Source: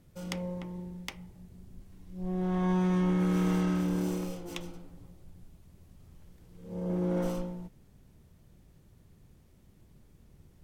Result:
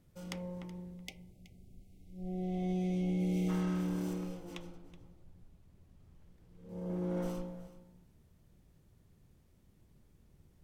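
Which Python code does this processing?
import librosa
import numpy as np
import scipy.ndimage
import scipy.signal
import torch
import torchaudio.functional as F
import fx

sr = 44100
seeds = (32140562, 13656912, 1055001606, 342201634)

y = fx.spec_box(x, sr, start_s=0.95, length_s=2.54, low_hz=800.0, high_hz=2000.0, gain_db=-28)
y = fx.high_shelf(y, sr, hz=5100.0, db=-7.5, at=(4.13, 6.69))
y = y + 10.0 ** (-17.0 / 20.0) * np.pad(y, (int(374 * sr / 1000.0), 0))[:len(y)]
y = y * 10.0 ** (-6.0 / 20.0)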